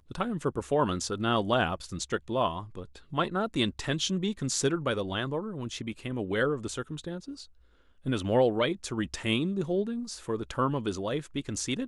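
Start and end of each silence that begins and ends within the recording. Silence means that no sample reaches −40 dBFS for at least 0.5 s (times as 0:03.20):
0:07.44–0:08.06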